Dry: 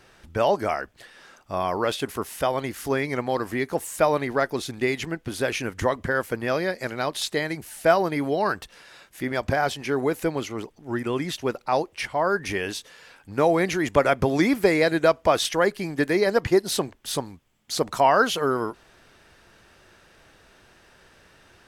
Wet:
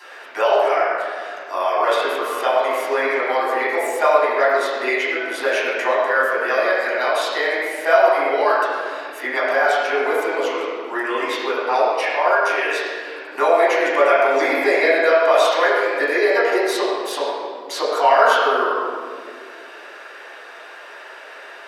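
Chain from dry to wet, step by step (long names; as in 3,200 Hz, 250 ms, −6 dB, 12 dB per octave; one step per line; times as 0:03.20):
Bessel high-pass filter 660 Hz, order 6
convolution reverb RT60 1.5 s, pre-delay 8 ms, DRR −11 dB
multiband upward and downward compressor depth 40%
level −4.5 dB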